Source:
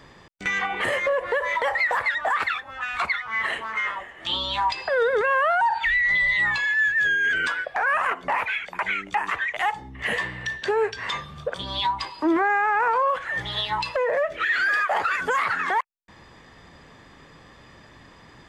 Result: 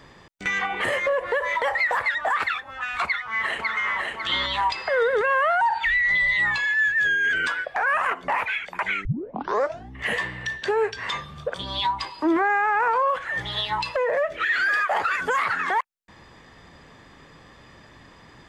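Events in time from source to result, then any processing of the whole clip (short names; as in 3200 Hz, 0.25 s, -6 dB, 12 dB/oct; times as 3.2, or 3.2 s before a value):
3.04–3.91 echo throw 0.55 s, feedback 40%, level -2.5 dB
9.05 tape start 0.88 s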